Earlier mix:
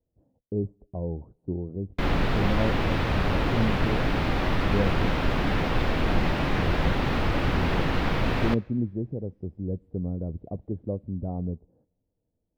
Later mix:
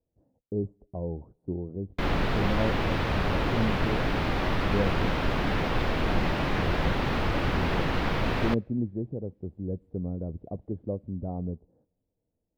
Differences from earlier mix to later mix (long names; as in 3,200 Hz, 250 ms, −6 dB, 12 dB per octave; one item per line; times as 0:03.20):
background: send −11.5 dB
master: add low-shelf EQ 230 Hz −3.5 dB